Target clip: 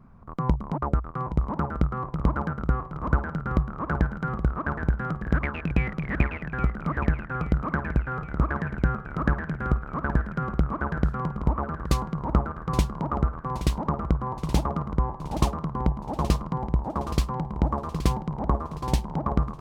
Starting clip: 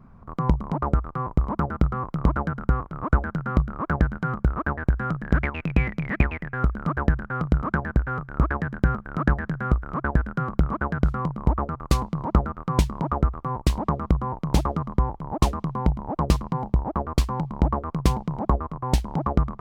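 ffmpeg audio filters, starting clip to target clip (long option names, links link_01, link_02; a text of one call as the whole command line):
ffmpeg -i in.wav -af "aecho=1:1:822|1644|2466|3288|4110|4932|5754:0.266|0.154|0.0895|0.0519|0.0301|0.0175|0.0101,volume=-2.5dB" out.wav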